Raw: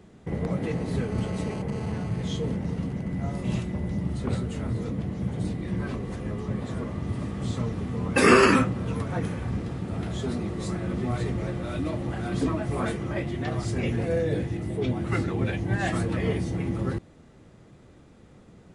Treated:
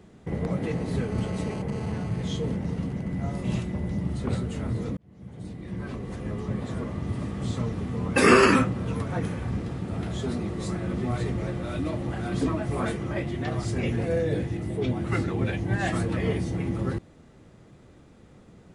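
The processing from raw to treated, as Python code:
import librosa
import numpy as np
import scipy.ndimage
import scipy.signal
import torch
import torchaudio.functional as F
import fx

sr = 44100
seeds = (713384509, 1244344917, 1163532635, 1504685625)

y = fx.edit(x, sr, fx.fade_in_span(start_s=4.97, length_s=1.39), tone=tone)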